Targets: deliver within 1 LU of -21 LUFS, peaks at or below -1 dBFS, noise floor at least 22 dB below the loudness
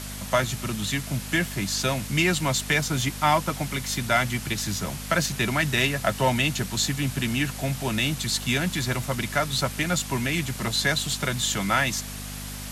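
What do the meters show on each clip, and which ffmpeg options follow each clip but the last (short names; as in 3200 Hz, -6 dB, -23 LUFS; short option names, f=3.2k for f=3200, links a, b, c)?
hum 50 Hz; harmonics up to 250 Hz; hum level -35 dBFS; noise floor -36 dBFS; noise floor target -47 dBFS; loudness -25.0 LUFS; peak -8.5 dBFS; loudness target -21.0 LUFS
-> -af "bandreject=f=50:t=h:w=4,bandreject=f=100:t=h:w=4,bandreject=f=150:t=h:w=4,bandreject=f=200:t=h:w=4,bandreject=f=250:t=h:w=4"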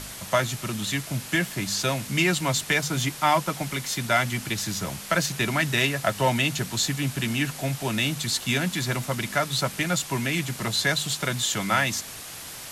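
hum none; noise floor -39 dBFS; noise floor target -47 dBFS
-> -af "afftdn=nr=8:nf=-39"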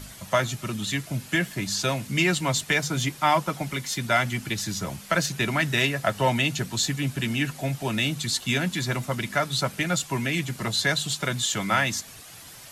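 noise floor -45 dBFS; noise floor target -48 dBFS
-> -af "afftdn=nr=6:nf=-45"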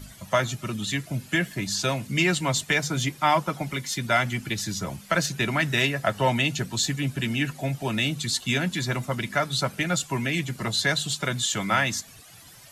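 noise floor -48 dBFS; loudness -25.5 LUFS; peak -8.5 dBFS; loudness target -21.0 LUFS
-> -af "volume=4.5dB"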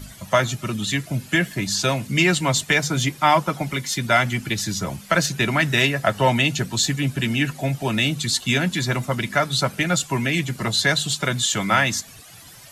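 loudness -21.0 LUFS; peak -4.0 dBFS; noise floor -44 dBFS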